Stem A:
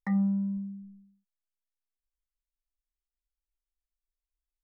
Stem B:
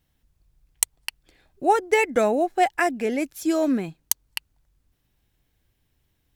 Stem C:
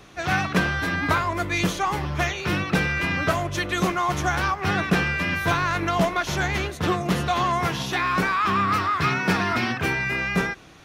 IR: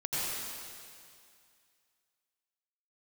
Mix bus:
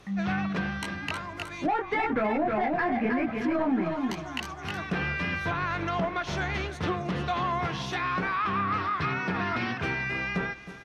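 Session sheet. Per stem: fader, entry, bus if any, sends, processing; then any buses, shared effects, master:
-3.5 dB, 0.00 s, no send, echo send -4 dB, band shelf 680 Hz -9 dB 2.9 oct
-8.5 dB, 0.00 s, no send, echo send -6 dB, graphic EQ 125/250/500/1000/2000/8000 Hz +4/+5/-6/+8/+6/-8 dB; sample leveller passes 3; detuned doubles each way 31 cents
-5.5 dB, 0.00 s, no send, echo send -15.5 dB, auto duck -13 dB, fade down 1.95 s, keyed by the second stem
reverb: off
echo: feedback echo 0.313 s, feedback 27%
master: notch 7100 Hz, Q 17; treble ducked by the level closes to 2000 Hz, closed at -21.5 dBFS; limiter -19 dBFS, peak gain reduction 8.5 dB

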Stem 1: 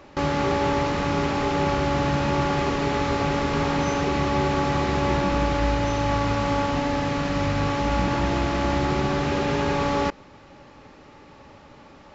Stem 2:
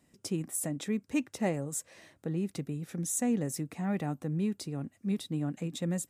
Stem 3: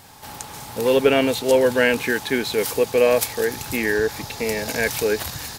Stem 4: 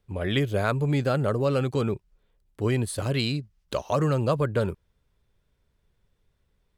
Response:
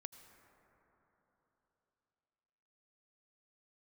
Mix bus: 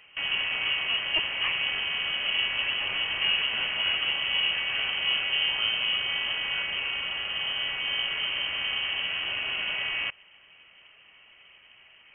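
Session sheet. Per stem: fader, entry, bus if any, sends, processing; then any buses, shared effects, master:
-7.5 dB, 0.00 s, no send, dry
+2.5 dB, 0.00 s, no send, minimum comb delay 0.53 ms
-17.0 dB, 1.75 s, no send, wavefolder -16 dBFS
off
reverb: off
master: inverted band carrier 3100 Hz; bell 240 Hz -2.5 dB 0.77 oct

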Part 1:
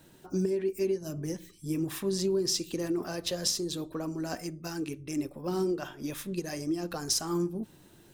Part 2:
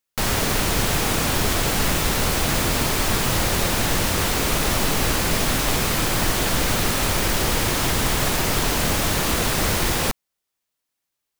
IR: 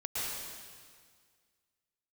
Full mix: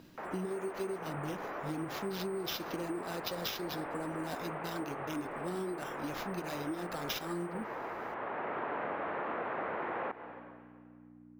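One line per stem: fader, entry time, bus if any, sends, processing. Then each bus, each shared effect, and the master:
-2.5 dB, 0.00 s, no send, sample-and-hold 5×
+0.5 dB, 0.00 s, send -19 dB, Bessel low-pass 1200 Hz, order 6; hum 60 Hz, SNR 13 dB; HPF 490 Hz 12 dB/oct; auto duck -15 dB, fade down 0.20 s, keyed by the first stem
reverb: on, RT60 1.8 s, pre-delay 0.104 s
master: compressor, threshold -34 dBFS, peak gain reduction 9 dB

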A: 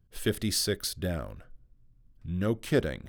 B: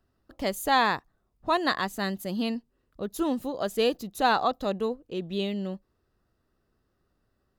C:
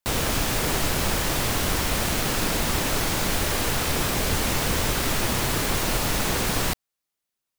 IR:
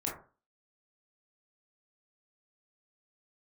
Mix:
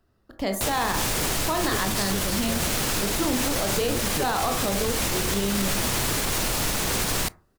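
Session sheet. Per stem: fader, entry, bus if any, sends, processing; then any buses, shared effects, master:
+0.5 dB, 1.45 s, no send, dry
+1.5 dB, 0.00 s, send -5.5 dB, dry
-1.0 dB, 0.55 s, send -23.5 dB, bell 8600 Hz +4.5 dB 2.2 oct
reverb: on, RT60 0.35 s, pre-delay 17 ms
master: limiter -15 dBFS, peak gain reduction 11.5 dB

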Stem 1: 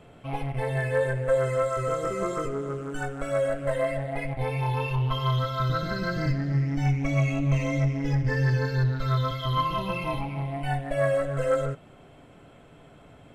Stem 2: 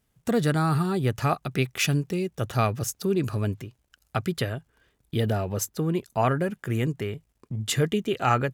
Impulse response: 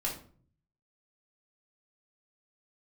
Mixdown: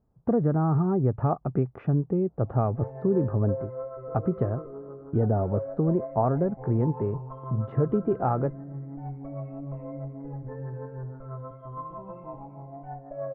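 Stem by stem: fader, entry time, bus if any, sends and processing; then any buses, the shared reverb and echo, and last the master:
-19.5 dB, 2.20 s, no send, low shelf 150 Hz -11.5 dB; AGC gain up to 13 dB
+3.0 dB, 0.00 s, no send, compressor 4:1, threshold -22 dBFS, peak gain reduction 5.5 dB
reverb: off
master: LPF 1000 Hz 24 dB/oct

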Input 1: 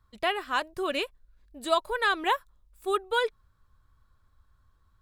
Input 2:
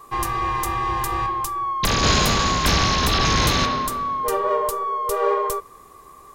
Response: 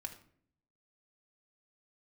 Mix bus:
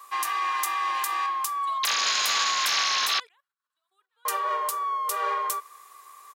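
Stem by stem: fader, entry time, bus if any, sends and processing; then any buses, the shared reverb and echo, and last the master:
-6.5 dB, 0.00 s, no send, echo send -21.5 dB, level quantiser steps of 16 dB
+1.5 dB, 0.00 s, muted 3.2–4.25, no send, no echo send, dry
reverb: off
echo: feedback echo 1.046 s, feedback 15%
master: HPF 1300 Hz 12 dB/oct; limiter -15 dBFS, peak gain reduction 8 dB

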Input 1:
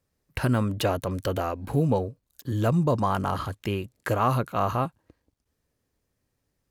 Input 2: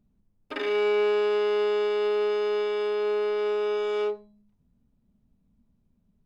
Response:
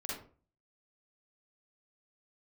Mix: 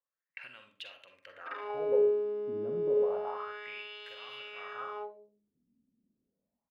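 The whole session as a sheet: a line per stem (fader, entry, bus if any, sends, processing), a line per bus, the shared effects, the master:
-14.0 dB, 0.00 s, send -3.5 dB, bell 2000 Hz +6.5 dB 1.2 oct; small resonant body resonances 530/2700 Hz, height 9 dB
-0.5 dB, 0.95 s, send -16.5 dB, high shelf 10000 Hz +9.5 dB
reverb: on, RT60 0.40 s, pre-delay 41 ms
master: wah 0.3 Hz 260–3300 Hz, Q 3.7

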